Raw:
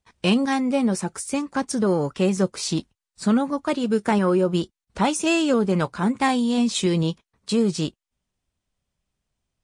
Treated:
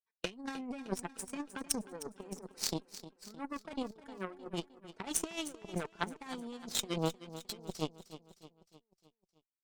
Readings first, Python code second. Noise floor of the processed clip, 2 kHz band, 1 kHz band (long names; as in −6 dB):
below −85 dBFS, −15.5 dB, −17.5 dB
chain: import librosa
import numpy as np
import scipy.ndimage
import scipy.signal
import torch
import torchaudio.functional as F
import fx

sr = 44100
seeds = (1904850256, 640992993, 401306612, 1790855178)

p1 = fx.bin_expand(x, sr, power=1.5)
p2 = scipy.signal.sosfilt(scipy.signal.butter(2, 270.0, 'highpass', fs=sr, output='sos'), p1)
p3 = fx.peak_eq(p2, sr, hz=400.0, db=8.5, octaves=0.81)
p4 = p3 + 0.61 * np.pad(p3, (int(4.5 * sr / 1000.0), 0))[:len(p3)]
p5 = fx.over_compress(p4, sr, threshold_db=-26.0, ratio=-1.0)
p6 = fx.cheby_harmonics(p5, sr, harmonics=(3, 4), levels_db=(-10, -30), full_scale_db=-9.5)
y = p6 + fx.echo_feedback(p6, sr, ms=308, feedback_pct=52, wet_db=-14.0, dry=0)